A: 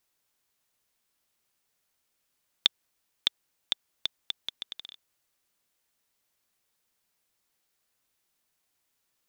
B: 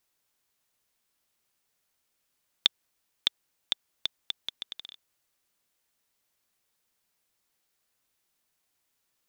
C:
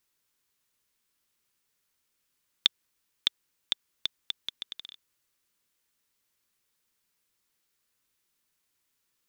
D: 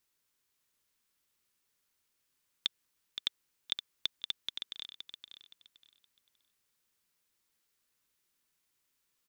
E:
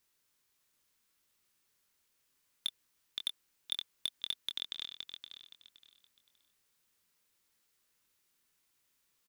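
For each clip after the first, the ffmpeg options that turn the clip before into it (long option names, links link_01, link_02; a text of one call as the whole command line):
ffmpeg -i in.wav -af anull out.wav
ffmpeg -i in.wav -af "equalizer=frequency=700:width_type=o:width=0.5:gain=-8.5" out.wav
ffmpeg -i in.wav -filter_complex "[0:a]alimiter=limit=-11.5dB:level=0:latency=1:release=44,asplit=2[link_01][link_02];[link_02]aecho=0:1:519|1038|1557:0.398|0.0995|0.0249[link_03];[link_01][link_03]amix=inputs=2:normalize=0,volume=-2.5dB" out.wav
ffmpeg -i in.wav -filter_complex "[0:a]volume=25dB,asoftclip=hard,volume=-25dB,asplit=2[link_01][link_02];[link_02]adelay=24,volume=-8dB[link_03];[link_01][link_03]amix=inputs=2:normalize=0,volume=2dB" out.wav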